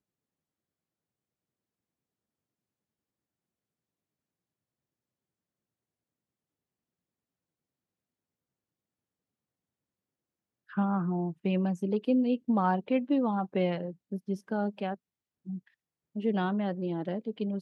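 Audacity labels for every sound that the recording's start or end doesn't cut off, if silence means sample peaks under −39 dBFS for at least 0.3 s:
10.730000	14.950000	sound
15.470000	15.580000	sound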